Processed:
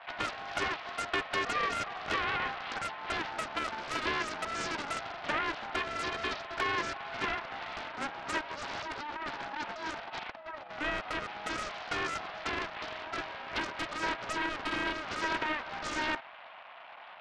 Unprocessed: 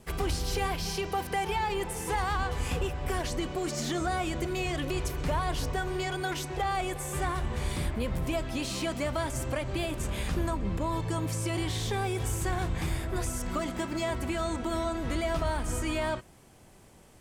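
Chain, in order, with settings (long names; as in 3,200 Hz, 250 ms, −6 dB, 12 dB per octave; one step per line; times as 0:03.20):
linear delta modulator 32 kbit/s, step −39 dBFS
0:08.50–0:10.70: compressor whose output falls as the input rises −33 dBFS, ratio −0.5
single-sideband voice off tune +300 Hz 340–2,700 Hz
highs frequency-modulated by the lows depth 0.73 ms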